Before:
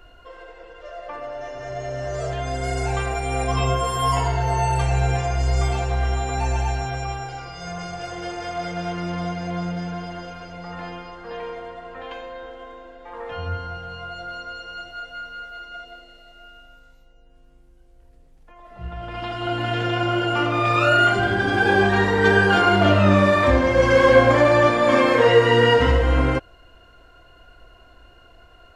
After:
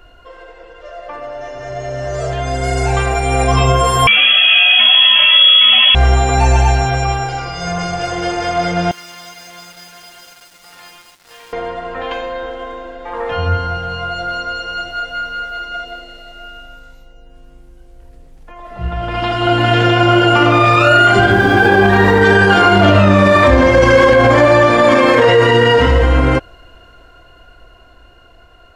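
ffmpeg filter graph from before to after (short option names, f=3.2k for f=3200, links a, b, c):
-filter_complex "[0:a]asettb=1/sr,asplit=3[a][b][c];[a]atrim=end=4.074[d];[b]atrim=start=4.07:end=5.95,asetpts=PTS-STARTPTS,afade=t=in:d=0.004:c=qsin,afade=t=out:st=1.876:d=0.004:c=qsin,aeval=exprs='0.355*sin(PI/2*1.41*val(0)/0.355)':c=same,lowpass=f=2.9k:t=q:w=0.5098,lowpass=f=2.9k:t=q:w=0.6013,lowpass=f=2.9k:t=q:w=0.9,lowpass=f=2.9k:t=q:w=2.563,afreqshift=-3400[e];[c]atrim=start=5.946[f];[d][e]acrossfade=d=0.004:c1=hsin:c2=qsin[g];[g][f]acrossfade=d=0.004:c1=qsin:c2=hsin,asettb=1/sr,asplit=3[h][i][j];[h]atrim=end=8.914[k];[i]atrim=start=8.91:end=11.53,asetpts=PTS-STARTPTS,afade=t=in:d=0.004:c=qsin,afade=t=out:st=2.616:d=0.004:c=qsin,aderivative,aeval=exprs='val(0)*gte(abs(val(0)),0.00299)':c=same[l];[j]atrim=start=11.526[m];[k][l]acrossfade=d=0.004:c1=hsin:c2=qsin[n];[n][m]acrossfade=d=0.004:c1=qsin:c2=hsin,asettb=1/sr,asplit=3[o][p][q];[o]atrim=end=21.314[r];[p]atrim=start=21.31:end=22.23,asetpts=PTS-STARTPTS,afade=t=in:d=0.004:c=qsin,afade=t=out:st=0.916:d=0.004:c=qsin,highshelf=f=5.3k:g=-11.5,aeval=exprs='sgn(val(0))*max(abs(val(0))-0.00668,0)':c=same[s];[q]atrim=start=22.226[t];[r][s]acrossfade=d=0.004:c1=hsin:c2=qsin[u];[u][t]acrossfade=d=0.004:c1=qsin:c2=hsin,alimiter=limit=-13dB:level=0:latency=1:release=38,dynaudnorm=f=460:g=13:m=7.5dB,volume=4.5dB"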